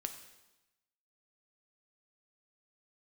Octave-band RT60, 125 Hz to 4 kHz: 1.1, 1.1, 1.0, 1.0, 1.0, 1.0 seconds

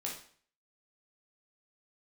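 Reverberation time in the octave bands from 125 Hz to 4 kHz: 0.55, 0.50, 0.50, 0.50, 0.50, 0.45 seconds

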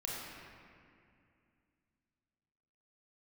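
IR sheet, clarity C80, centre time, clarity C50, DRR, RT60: −0.5 dB, 140 ms, −2.0 dB, −5.0 dB, 2.4 s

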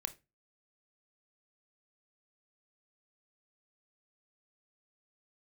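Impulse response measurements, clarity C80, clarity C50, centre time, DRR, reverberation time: 24.5 dB, 17.5 dB, 5 ms, 10.0 dB, 0.25 s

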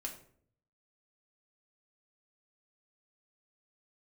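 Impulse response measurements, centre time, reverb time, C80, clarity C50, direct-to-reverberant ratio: 16 ms, 0.60 s, 13.0 dB, 9.0 dB, −0.5 dB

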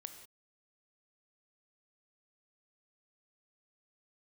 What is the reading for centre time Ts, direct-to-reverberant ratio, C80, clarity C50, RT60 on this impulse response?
16 ms, 7.5 dB, 10.0 dB, 8.5 dB, non-exponential decay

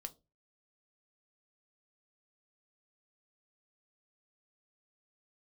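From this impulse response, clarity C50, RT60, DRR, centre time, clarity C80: 21.0 dB, 0.25 s, 8.0 dB, 3 ms, 28.0 dB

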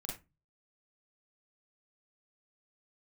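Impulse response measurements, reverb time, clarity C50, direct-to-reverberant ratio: 0.25 s, 5.0 dB, −2.5 dB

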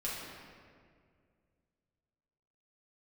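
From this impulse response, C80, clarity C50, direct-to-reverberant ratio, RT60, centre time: 1.5 dB, −1.0 dB, −8.0 dB, 2.1 s, 114 ms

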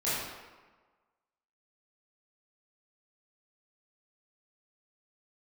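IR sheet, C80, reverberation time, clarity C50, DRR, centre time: 1.0 dB, 1.3 s, −2.0 dB, −12.0 dB, 96 ms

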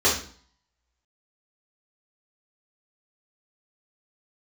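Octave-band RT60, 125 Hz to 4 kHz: 0.60, 0.55, 0.45, 0.50, 0.45, 0.45 seconds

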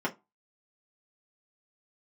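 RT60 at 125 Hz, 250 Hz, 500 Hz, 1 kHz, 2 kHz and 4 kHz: 0.20, 0.25, 0.20, 0.20, 0.15, 0.15 seconds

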